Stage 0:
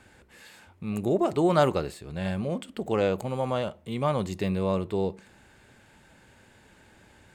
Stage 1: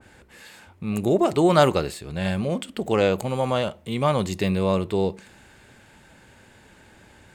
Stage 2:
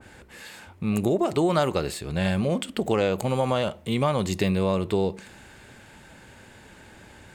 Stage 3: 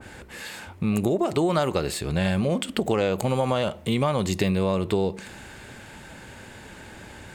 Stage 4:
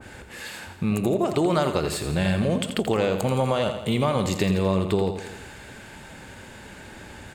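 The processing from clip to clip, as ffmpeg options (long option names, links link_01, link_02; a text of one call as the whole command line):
ffmpeg -i in.wav -af "adynamicequalizer=threshold=0.00708:dfrequency=1800:dqfactor=0.7:tfrequency=1800:tqfactor=0.7:attack=5:release=100:ratio=0.375:range=2:mode=boostabove:tftype=highshelf,volume=4.5dB" out.wav
ffmpeg -i in.wav -af "acompressor=threshold=-23dB:ratio=4,volume=3dB" out.wav
ffmpeg -i in.wav -af "acompressor=threshold=-29dB:ratio=2,volume=5.5dB" out.wav
ffmpeg -i in.wav -af "aecho=1:1:84|168|252|336|420|504:0.355|0.195|0.107|0.059|0.0325|0.0179" out.wav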